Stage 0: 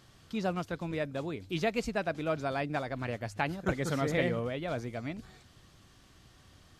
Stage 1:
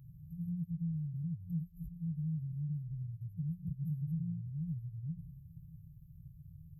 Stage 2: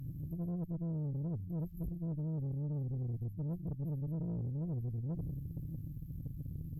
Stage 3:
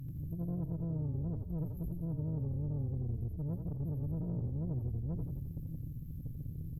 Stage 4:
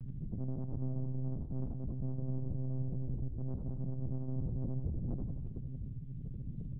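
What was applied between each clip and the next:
brick-wall band-stop 180–11,000 Hz; downward compressor 4 to 1, threshold −50 dBFS, peak gain reduction 15 dB; graphic EQ with 15 bands 160 Hz +10 dB, 1,000 Hz +6 dB, 10,000 Hz −11 dB; level +4.5 dB
reversed playback; downward compressor 16 to 1, threshold −43 dBFS, peak gain reduction 12 dB; reversed playback; tube saturation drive 48 dB, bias 0.6; level +14 dB
echo with shifted repeats 86 ms, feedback 54%, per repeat −40 Hz, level −5.5 dB
convolution reverb, pre-delay 68 ms, DRR 12.5 dB; one-pitch LPC vocoder at 8 kHz 130 Hz

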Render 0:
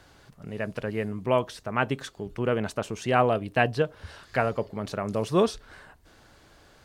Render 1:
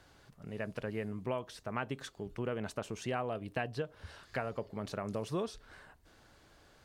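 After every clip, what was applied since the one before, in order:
downward compressor 5 to 1, threshold −26 dBFS, peak gain reduction 9.5 dB
level −6.5 dB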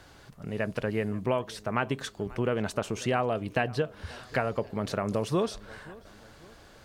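feedback echo with a low-pass in the loop 537 ms, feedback 46%, low-pass 3,400 Hz, level −21 dB
level +8.5 dB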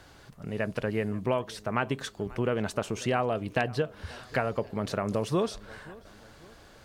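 AAC 128 kbit/s 48,000 Hz

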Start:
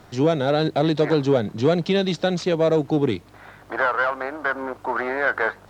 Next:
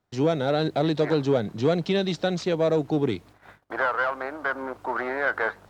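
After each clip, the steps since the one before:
noise gate −43 dBFS, range −26 dB
level −3.5 dB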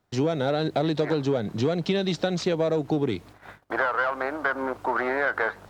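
downward compressor, threshold −25 dBFS, peak gain reduction 8.5 dB
level +4.5 dB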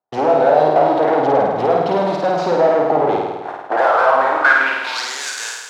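leveller curve on the samples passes 5
band-pass filter sweep 760 Hz → 7,100 Hz, 0:04.18–0:05.12
on a send: flutter between parallel walls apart 8.9 metres, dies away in 1.2 s
on the sum: level +4 dB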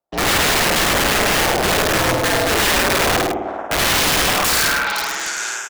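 wrap-around overflow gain 12.5 dB
frequency shifter −70 Hz
single-tap delay 104 ms −5.5 dB

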